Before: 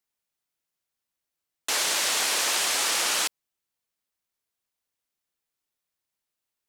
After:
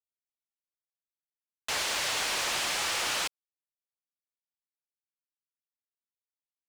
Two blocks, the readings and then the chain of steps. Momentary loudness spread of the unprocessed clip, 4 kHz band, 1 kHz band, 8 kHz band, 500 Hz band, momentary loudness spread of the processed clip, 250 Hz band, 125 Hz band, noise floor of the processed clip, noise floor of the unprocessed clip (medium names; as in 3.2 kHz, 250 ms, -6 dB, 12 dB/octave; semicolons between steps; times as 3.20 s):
6 LU, -5.0 dB, -3.0 dB, -8.0 dB, -3.5 dB, 6 LU, -3.0 dB, no reading, under -85 dBFS, under -85 dBFS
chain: local Wiener filter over 41 samples; bit crusher 7-bit; overdrive pedal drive 20 dB, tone 3.5 kHz, clips at -13 dBFS; trim -7 dB